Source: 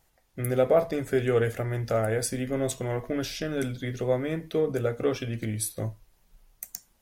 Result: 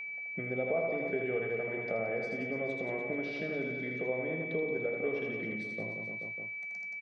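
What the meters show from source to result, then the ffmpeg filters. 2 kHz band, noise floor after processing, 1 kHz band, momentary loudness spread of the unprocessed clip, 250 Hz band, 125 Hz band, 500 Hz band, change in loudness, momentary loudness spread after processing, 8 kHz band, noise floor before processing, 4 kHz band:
+4.0 dB, -41 dBFS, -8.5 dB, 11 LU, -7.5 dB, -14.5 dB, -7.0 dB, -6.5 dB, 5 LU, under -30 dB, -66 dBFS, -15.0 dB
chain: -af "aecho=1:1:80|176|291.2|429.4|595.3:0.631|0.398|0.251|0.158|0.1,acompressor=threshold=-43dB:ratio=2.5,highpass=f=150:w=0.5412,highpass=f=150:w=1.3066,equalizer=f=180:t=q:w=4:g=5,equalizer=f=440:t=q:w=4:g=4,equalizer=f=690:t=q:w=4:g=4,equalizer=f=1.4k:t=q:w=4:g=-8,equalizer=f=3.3k:t=q:w=4:g=-5,lowpass=f=3.6k:w=0.5412,lowpass=f=3.6k:w=1.3066,aeval=exprs='val(0)+0.01*sin(2*PI*2300*n/s)':c=same,volume=2dB"

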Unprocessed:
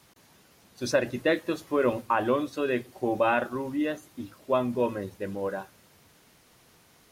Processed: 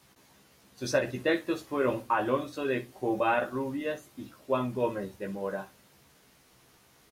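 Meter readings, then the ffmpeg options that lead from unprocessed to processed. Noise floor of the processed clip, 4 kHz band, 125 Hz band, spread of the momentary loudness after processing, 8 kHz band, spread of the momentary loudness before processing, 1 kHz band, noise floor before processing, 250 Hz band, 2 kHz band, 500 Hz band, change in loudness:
-62 dBFS, -2.0 dB, -0.5 dB, 12 LU, n/a, 10 LU, -1.5 dB, -60 dBFS, -3.0 dB, -2.0 dB, -3.0 dB, -2.5 dB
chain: -af "aecho=1:1:15|63:0.668|0.178,volume=-3.5dB"

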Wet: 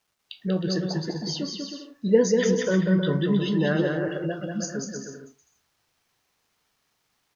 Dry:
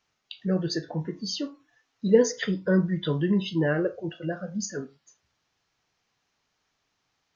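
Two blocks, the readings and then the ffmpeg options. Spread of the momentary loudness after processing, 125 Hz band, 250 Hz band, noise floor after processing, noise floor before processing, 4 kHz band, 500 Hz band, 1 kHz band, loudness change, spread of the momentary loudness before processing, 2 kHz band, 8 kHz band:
13 LU, +2.5 dB, +2.5 dB, -74 dBFS, -77 dBFS, +2.0 dB, +2.0 dB, +2.5 dB, +2.0 dB, 13 LU, +2.0 dB, n/a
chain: -af "aecho=1:1:190|313.5|393.8|446|479.9:0.631|0.398|0.251|0.158|0.1,acrusher=bits=11:mix=0:aa=0.000001"

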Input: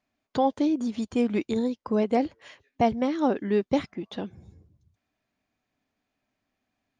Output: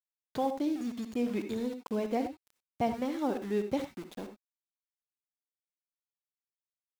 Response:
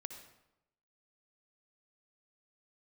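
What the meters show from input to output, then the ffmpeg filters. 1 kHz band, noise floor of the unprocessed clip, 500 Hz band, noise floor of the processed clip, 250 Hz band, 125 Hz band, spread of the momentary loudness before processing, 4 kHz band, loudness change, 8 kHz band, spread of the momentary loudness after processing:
-7.5 dB, -82 dBFS, -7.0 dB, under -85 dBFS, -7.0 dB, -7.5 dB, 11 LU, -6.5 dB, -7.0 dB, n/a, 12 LU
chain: -filter_complex "[0:a]aeval=exprs='val(0)*gte(abs(val(0)),0.0168)':c=same[a];[1:a]atrim=start_sample=2205,atrim=end_sample=4410[b];[a][b]afir=irnorm=-1:irlink=0,volume=-3.5dB"

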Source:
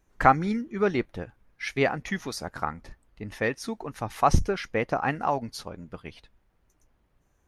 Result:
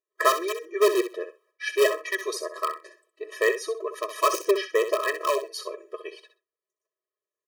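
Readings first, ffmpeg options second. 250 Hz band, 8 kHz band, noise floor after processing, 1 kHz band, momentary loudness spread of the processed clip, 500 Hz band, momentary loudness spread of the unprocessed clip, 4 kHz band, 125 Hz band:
-5.5 dB, +7.0 dB, under -85 dBFS, -2.0 dB, 17 LU, +5.5 dB, 18 LU, +6.5 dB, under -40 dB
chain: -filter_complex "[0:a]agate=range=-24dB:threshold=-58dB:ratio=16:detection=peak,lowshelf=f=130:t=q:w=1.5:g=-6,bandreject=f=2.5k:w=17,aecho=1:1:4.7:0.47,asplit=2[a][b];[b]aeval=exprs='(mod(6.31*val(0)+1,2)-1)/6.31':c=same,volume=-5dB[c];[a][c]amix=inputs=2:normalize=0,aecho=1:1:64|128:0.299|0.0478,afftfilt=real='re*eq(mod(floor(b*sr/1024/330),2),1)':imag='im*eq(mod(floor(b*sr/1024/330),2),1)':win_size=1024:overlap=0.75,volume=1.5dB"

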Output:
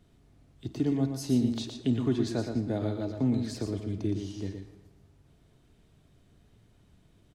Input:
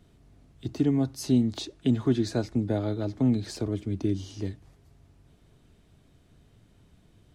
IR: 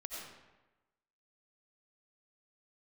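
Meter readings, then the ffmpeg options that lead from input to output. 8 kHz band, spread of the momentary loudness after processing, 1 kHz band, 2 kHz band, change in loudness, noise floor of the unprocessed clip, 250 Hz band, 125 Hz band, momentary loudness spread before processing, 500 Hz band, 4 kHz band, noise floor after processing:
-2.5 dB, 11 LU, -2.5 dB, -2.5 dB, -2.5 dB, -61 dBFS, -2.5 dB, -3.0 dB, 11 LU, -2.5 dB, -2.5 dB, -63 dBFS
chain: -filter_complex "[0:a]aecho=1:1:117:0.473,asplit=2[a][b];[1:a]atrim=start_sample=2205,adelay=52[c];[b][c]afir=irnorm=-1:irlink=0,volume=-11dB[d];[a][d]amix=inputs=2:normalize=0,volume=-3.5dB"

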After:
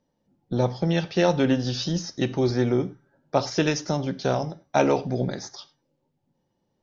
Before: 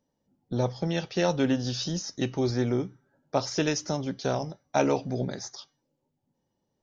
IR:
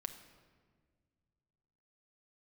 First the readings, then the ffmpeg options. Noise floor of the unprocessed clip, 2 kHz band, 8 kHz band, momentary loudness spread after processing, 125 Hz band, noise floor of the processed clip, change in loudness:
-79 dBFS, +4.0 dB, n/a, 8 LU, +4.5 dB, -75 dBFS, +4.0 dB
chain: -filter_complex "[0:a]lowpass=5.3k,asplit=2[a][b];[1:a]atrim=start_sample=2205,afade=t=out:st=0.16:d=0.01,atrim=end_sample=7497[c];[b][c]afir=irnorm=-1:irlink=0,volume=3dB[d];[a][d]amix=inputs=2:normalize=0,volume=-2dB"

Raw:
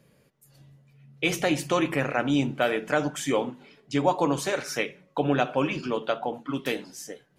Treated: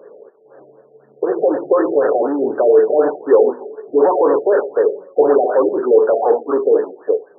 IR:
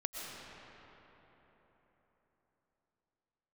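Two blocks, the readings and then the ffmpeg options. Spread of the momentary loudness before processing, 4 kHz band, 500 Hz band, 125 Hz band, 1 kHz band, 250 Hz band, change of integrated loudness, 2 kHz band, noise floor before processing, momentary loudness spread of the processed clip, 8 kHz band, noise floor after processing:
7 LU, under -40 dB, +16.0 dB, under -10 dB, +8.0 dB, +5.5 dB, +11.5 dB, -3.0 dB, -64 dBFS, 6 LU, under -40 dB, -50 dBFS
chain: -filter_complex "[0:a]asplit=2[a][b];[b]highpass=f=720:p=1,volume=32dB,asoftclip=type=tanh:threshold=-7dB[c];[a][c]amix=inputs=2:normalize=0,lowpass=f=1.4k:p=1,volume=-6dB,highpass=f=420:t=q:w=4.9,afftfilt=real='re*lt(b*sr/1024,760*pow(1900/760,0.5+0.5*sin(2*PI*4*pts/sr)))':imag='im*lt(b*sr/1024,760*pow(1900/760,0.5+0.5*sin(2*PI*4*pts/sr)))':win_size=1024:overlap=0.75,volume=-3.5dB"

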